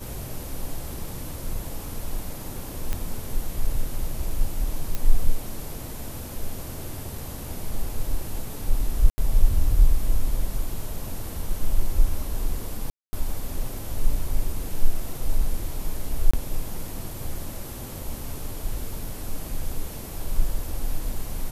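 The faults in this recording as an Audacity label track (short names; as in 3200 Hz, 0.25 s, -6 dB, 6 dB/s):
2.930000	2.930000	pop -13 dBFS
4.950000	4.950000	pop -12 dBFS
9.100000	9.180000	gap 80 ms
12.900000	13.130000	gap 0.23 s
16.310000	16.340000	gap 25 ms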